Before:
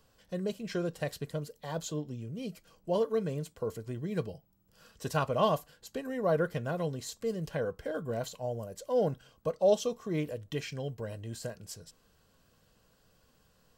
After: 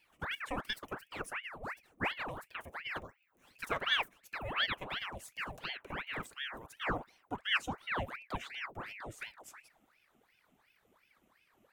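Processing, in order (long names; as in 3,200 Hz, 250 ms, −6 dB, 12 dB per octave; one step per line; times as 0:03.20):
gliding playback speed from 149% → 86%
high-shelf EQ 4,300 Hz −5.5 dB
phaser with its sweep stopped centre 910 Hz, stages 8
ring modulator whose carrier an LFO sweeps 1,400 Hz, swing 85%, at 2.8 Hz
level +2 dB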